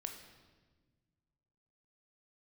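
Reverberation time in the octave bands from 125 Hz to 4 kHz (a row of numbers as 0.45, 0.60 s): 2.4, 2.1, 1.6, 1.2, 1.2, 1.1 s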